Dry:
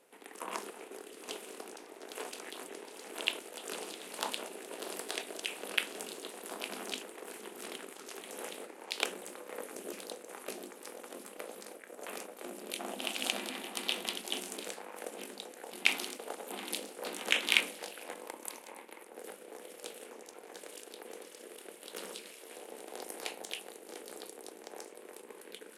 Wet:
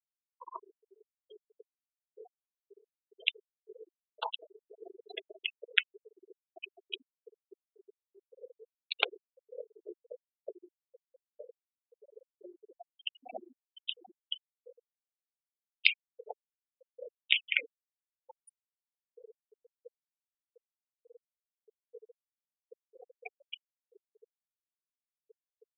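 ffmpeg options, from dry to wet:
-filter_complex "[0:a]asettb=1/sr,asplit=3[a][b][c];[a]atrim=end=5.984[d];[b]atrim=start=5.98:end=8.09,asetpts=PTS-STARTPTS,afade=t=in:d=0.004:c=qsin,afade=t=out:st=2.106:d=0.004:c=qsin,acrossover=split=1200[e][f];[e]adelay=50[g];[g][f]amix=inputs=2:normalize=0,atrim=end_sample=93051[h];[c]atrim=start=8.086[i];[d][h]acrossfade=d=0.004:c1=hsin:c2=qsin[j];[j][i]acrossfade=d=0.004:c1=qsin:c2=hsin,asettb=1/sr,asplit=3[k][l][m];[k]atrim=end=12.664[n];[l]atrim=start=12.66:end=18.37,asetpts=PTS-STARTPTS,afade=t=in:d=0.004:c=qsin,afade=t=out:st=5.706:d=0.004:c=qsin,acrossover=split=2100[o][p];[o]aeval=exprs='val(0)*(1-1/2+1/2*cos(2*PI*1.4*n/s))':c=same[q];[p]aeval=exprs='val(0)*(1-1/2-1/2*cos(2*PI*1.4*n/s))':c=same[r];[q][r]amix=inputs=2:normalize=0[s];[m]atrim=start=18.366[t];[n][s]acrossfade=d=0.004:c1=hsin:c2=qsin[u];[u][t]acrossfade=d=0.004:c1=qsin:c2=hsin,afftfilt=real='re*gte(hypot(re,im),0.0447)':imag='im*gte(hypot(re,im),0.0447)':win_size=1024:overlap=0.75,highpass=510,dynaudnorm=f=770:g=9:m=7dB"

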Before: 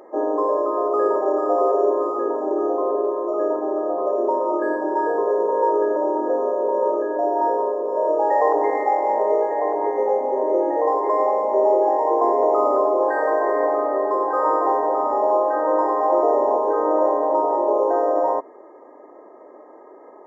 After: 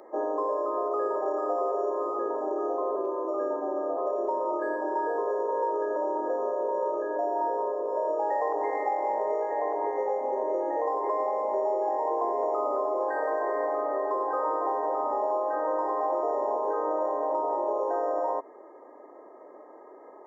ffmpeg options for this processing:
-filter_complex "[0:a]asettb=1/sr,asplit=3[a][b][c];[a]atrim=end=2.964[d];[b]atrim=start=2.96:end=3.97,asetpts=PTS-STARTPTS,afade=t=in:d=0.004:c=qsin,afade=t=out:st=1.006:d=0.004:c=qsin,afreqshift=-22[e];[c]atrim=start=3.966[f];[d][e]acrossfade=d=0.004:c1=hsin:c2=qsin[g];[g][f]acrossfade=d=0.004:c1=qsin:c2=hsin,lowshelf=f=180:g=-7,acrossover=split=350|1100[h][i][j];[h]acompressor=threshold=-40dB:ratio=4[k];[i]acompressor=threshold=-24dB:ratio=4[l];[j]acompressor=threshold=-34dB:ratio=4[m];[k][l][m]amix=inputs=3:normalize=0,volume=-3.5dB"

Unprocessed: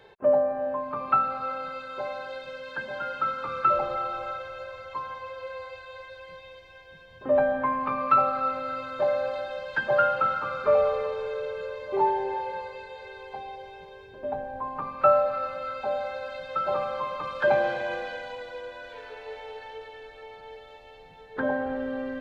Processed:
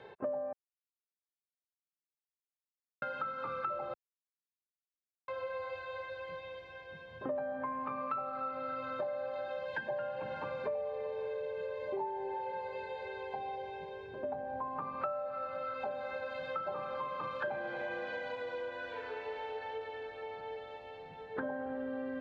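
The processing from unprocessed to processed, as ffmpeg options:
-filter_complex "[0:a]asettb=1/sr,asplit=3[a][b][c];[a]atrim=end=9.664[d];[b]atrim=start=9.66:end=14.06,asetpts=PTS-STARTPTS,afade=t=in:d=0.004:c=qsin,afade=t=out:st=4.396:d=0.004:c=qsin,asuperstop=centerf=1300:order=4:qfactor=3.1[e];[c]atrim=start=14.056[f];[d][e]acrossfade=d=0.004:c1=hsin:c2=qsin[g];[g][f]acrossfade=d=0.004:c1=qsin:c2=hsin,asettb=1/sr,asplit=3[h][i][j];[h]atrim=end=15.704[k];[i]atrim=start=15.7:end=19.52,asetpts=PTS-STARTPTS,afade=t=in:d=0.004:c=qsin,afade=t=out:st=3.816:d=0.004:c=qsin,asplit=2[l][m];[m]adelay=35,volume=-7dB[n];[l][n]amix=inputs=2:normalize=0,atrim=end_sample=168462[o];[j]atrim=start=19.516[p];[k][o]acrossfade=d=0.004:c1=hsin:c2=qsin[q];[q][p]acrossfade=d=0.004:c1=qsin:c2=hsin,asplit=5[r][s][t][u][v];[r]atrim=end=0.53,asetpts=PTS-STARTPTS,afade=t=out:st=0.526:d=0.004:c=hsin[w];[s]atrim=start=0.53:end=3.02,asetpts=PTS-STARTPTS,volume=0[x];[t]atrim=start=3.02:end=3.94,asetpts=PTS-STARTPTS,afade=t=in:d=0.004:c=hsin,afade=t=out:st=0.916:d=0.004:c=hsin[y];[u]atrim=start=3.94:end=5.28,asetpts=PTS-STARTPTS,volume=0[z];[v]atrim=start=5.28,asetpts=PTS-STARTPTS,afade=t=in:d=0.004:c=hsin[aa];[w][x][y][z][aa]concat=n=5:v=0:a=1,highpass=86,aemphasis=mode=reproduction:type=75fm,acompressor=threshold=-37dB:ratio=6,volume=1dB"

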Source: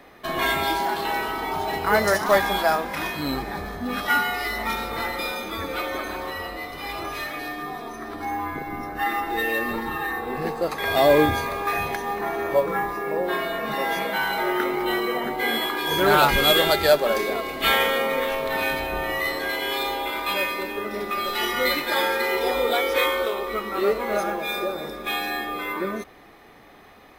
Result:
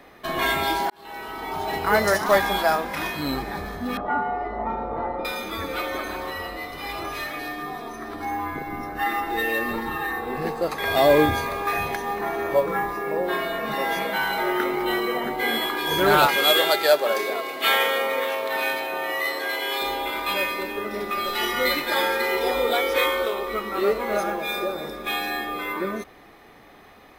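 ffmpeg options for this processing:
-filter_complex "[0:a]asettb=1/sr,asplit=3[a][b][c];[a]atrim=end=3.974[d];[b]atrim=start=3.97:end=5.25,asetpts=PTS-STARTPTS,afade=t=in:d=0.004:c=qsin,afade=t=out:st=1.276:d=0.004:c=qsin,lowpass=f=800:t=q:w=1.6[e];[c]atrim=start=5.246[f];[d][e]acrossfade=d=0.004:c1=hsin:c2=qsin[g];[g][f]acrossfade=d=0.004:c1=qsin:c2=hsin,asettb=1/sr,asplit=3[h][i][j];[h]atrim=end=16.264[k];[i]atrim=start=16.26:end=19.82,asetpts=PTS-STARTPTS,afade=t=in:d=0.004:c=qsin,afade=t=out:st=3.556:d=0.004:c=qsin,highpass=360[l];[j]atrim=start=19.816[m];[k][l]acrossfade=d=0.004:c1=hsin:c2=qsin[n];[n][m]acrossfade=d=0.004:c1=qsin:c2=hsin,asplit=2[o][p];[o]atrim=end=0.9,asetpts=PTS-STARTPTS,afade=t=out:st=0.896:d=0.004:c=hsin[q];[p]atrim=start=0.9,asetpts=PTS-STARTPTS,afade=t=in:d=0.86[r];[q][r]concat=n=2:v=0:a=1"

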